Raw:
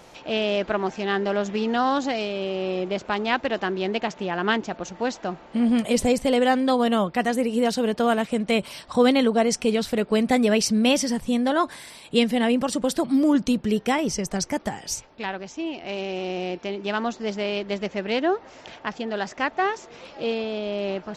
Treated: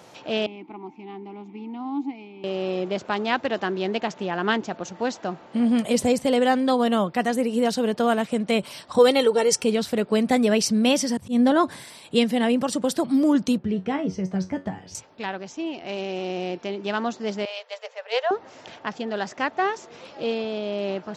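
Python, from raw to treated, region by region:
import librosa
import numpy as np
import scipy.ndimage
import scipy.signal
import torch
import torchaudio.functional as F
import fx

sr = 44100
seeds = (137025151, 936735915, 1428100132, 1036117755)

y = fx.chain(x, sr, fx.vowel_filter(vowel='u'),
    fx.low_shelf(hz=210.0, db=8.0), at=(0.46, 2.44))
y = fx.chain(y, sr, fx.high_shelf(hz=6500.0, db=6.5),
    fx.comb(ms=2.2, depth=0.68), at=(8.98, 9.64))
y = fx.chain(y, sr, fx.low_shelf(hz=290.0, db=10.5),
    fx.auto_swell(attack_ms=124.0), at=(11.17, 11.84))
y = fx.chain(y, sr, fx.lowpass(hz=3300.0, slope=12),
    fx.low_shelf(hz=320.0, db=10.0),
    fx.comb_fb(f0_hz=93.0, decay_s=0.21, harmonics='all', damping=0.0, mix_pct=80), at=(13.58, 14.95))
y = fx.chain(y, sr, fx.cheby1_highpass(hz=440.0, order=10),
    fx.band_widen(depth_pct=100), at=(17.45, 18.31))
y = scipy.signal.sosfilt(scipy.signal.butter(4, 83.0, 'highpass', fs=sr, output='sos'), y)
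y = fx.peak_eq(y, sr, hz=2300.0, db=-2.0, octaves=0.77)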